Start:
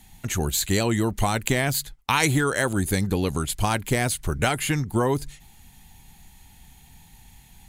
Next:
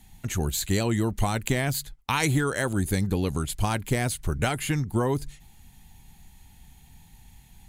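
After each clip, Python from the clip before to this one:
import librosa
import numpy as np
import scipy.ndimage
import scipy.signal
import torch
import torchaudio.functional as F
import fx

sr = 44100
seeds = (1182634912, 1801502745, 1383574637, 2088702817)

y = fx.low_shelf(x, sr, hz=280.0, db=4.5)
y = y * 10.0 ** (-4.5 / 20.0)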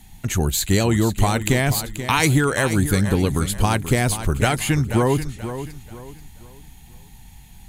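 y = fx.echo_feedback(x, sr, ms=483, feedback_pct=33, wet_db=-11)
y = y * 10.0 ** (6.5 / 20.0)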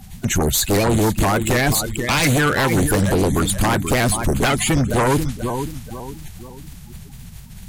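y = fx.spec_quant(x, sr, step_db=30)
y = fx.fold_sine(y, sr, drive_db=11, ceiling_db=-4.0)
y = fx.vibrato_shape(y, sr, shape='saw_up', rate_hz=4.0, depth_cents=100.0)
y = y * 10.0 ** (-8.5 / 20.0)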